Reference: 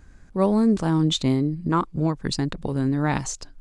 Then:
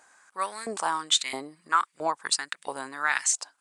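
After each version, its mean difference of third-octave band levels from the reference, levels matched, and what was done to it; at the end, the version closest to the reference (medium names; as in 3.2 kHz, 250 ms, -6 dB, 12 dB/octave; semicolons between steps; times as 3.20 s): 11.5 dB: LFO high-pass saw up 1.5 Hz 720–2100 Hz; peaking EQ 8.7 kHz +13 dB 0.63 oct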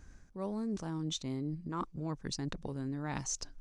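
2.5 dB: peaking EQ 5.9 kHz +9.5 dB 0.31 oct; reverse; compression 6:1, threshold -29 dBFS, peak gain reduction 13.5 dB; reverse; trim -5.5 dB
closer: second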